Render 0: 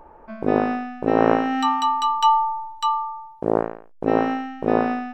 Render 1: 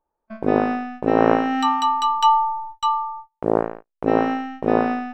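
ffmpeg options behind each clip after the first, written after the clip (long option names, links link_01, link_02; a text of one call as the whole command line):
ffmpeg -i in.wav -af "agate=range=-34dB:threshold=-35dB:ratio=16:detection=peak,volume=1dB" out.wav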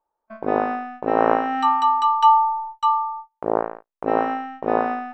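ffmpeg -i in.wav -af "equalizer=frequency=980:width_type=o:width=2.7:gain=12.5,volume=-10.5dB" out.wav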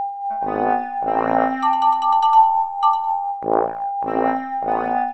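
ffmpeg -i in.wav -af "aecho=1:1:106|212|318:0.531|0.0903|0.0153,aeval=exprs='val(0)+0.0794*sin(2*PI*800*n/s)':channel_layout=same,aphaser=in_gain=1:out_gain=1:delay=1.4:decay=0.44:speed=1.4:type=sinusoidal,volume=-2.5dB" out.wav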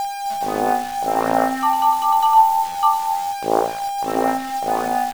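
ffmpeg -i in.wav -af "acrusher=bits=6:dc=4:mix=0:aa=0.000001" out.wav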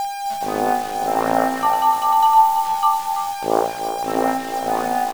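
ffmpeg -i in.wav -af "aecho=1:1:333|666|999|1332:0.316|0.117|0.0433|0.016" out.wav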